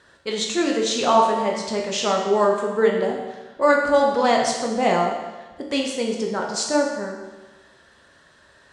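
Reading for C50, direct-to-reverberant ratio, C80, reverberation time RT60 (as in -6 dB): 3.5 dB, -0.5 dB, 5.0 dB, 1.2 s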